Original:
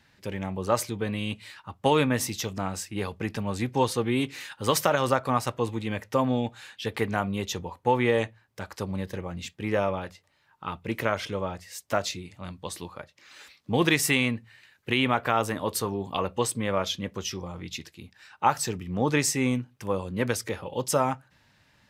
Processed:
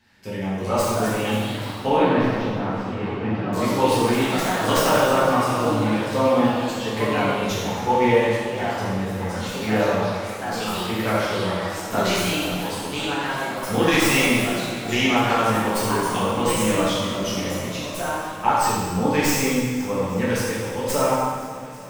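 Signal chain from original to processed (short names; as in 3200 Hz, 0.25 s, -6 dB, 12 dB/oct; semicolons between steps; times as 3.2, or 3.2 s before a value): tracing distortion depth 0.06 ms; swung echo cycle 0.843 s, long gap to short 1.5:1, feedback 60%, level -20 dB; echoes that change speed 0.383 s, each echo +3 st, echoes 3, each echo -6 dB; 1.86–3.53 air absorption 360 m; plate-style reverb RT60 1.6 s, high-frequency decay 0.9×, DRR -9 dB; gain -4 dB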